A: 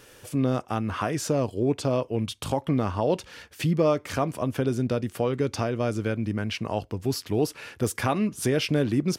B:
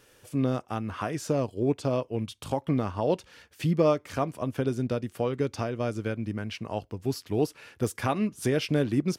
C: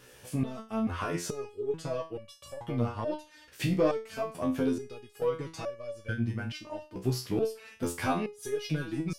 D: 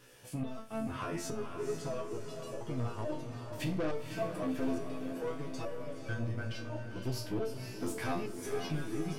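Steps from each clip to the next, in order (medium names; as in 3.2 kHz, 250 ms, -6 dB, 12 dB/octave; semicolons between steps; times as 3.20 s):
upward expansion 1.5:1, over -34 dBFS
in parallel at +1 dB: compression, threshold -33 dBFS, peak gain reduction 14.5 dB; on the sum: saturation -13 dBFS, distortion -21 dB; resonator arpeggio 2.3 Hz 63–570 Hz; trim +5.5 dB
saturation -26 dBFS, distortion -12 dB; echo that smears into a reverb 517 ms, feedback 56%, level -6.5 dB; on a send at -9.5 dB: reverberation RT60 0.30 s, pre-delay 3 ms; on the sum: trim -4.5 dB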